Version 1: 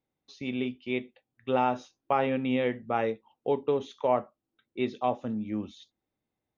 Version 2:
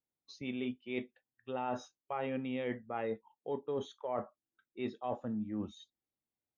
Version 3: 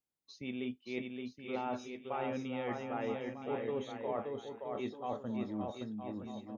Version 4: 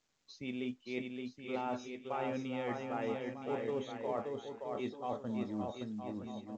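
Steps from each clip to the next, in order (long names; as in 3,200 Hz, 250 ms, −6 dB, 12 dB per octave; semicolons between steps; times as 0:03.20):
noise reduction from a noise print of the clip's start 13 dB; reversed playback; downward compressor 6 to 1, threshold −34 dBFS, peak gain reduction 13.5 dB; reversed playback
bouncing-ball delay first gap 570 ms, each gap 0.7×, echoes 5; level −1.5 dB
mu-law 128 kbit/s 16,000 Hz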